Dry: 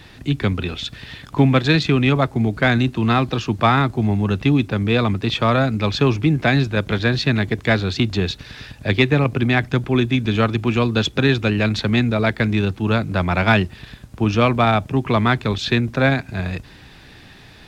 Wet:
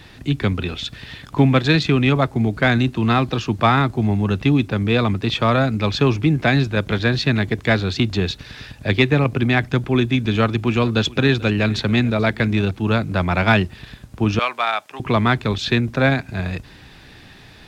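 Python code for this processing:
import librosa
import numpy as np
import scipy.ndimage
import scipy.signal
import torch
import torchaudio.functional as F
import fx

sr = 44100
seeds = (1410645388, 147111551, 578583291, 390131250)

y = fx.echo_single(x, sr, ms=439, db=-21.0, at=(10.37, 12.71))
y = fx.highpass(y, sr, hz=950.0, slope=12, at=(14.39, 15.0))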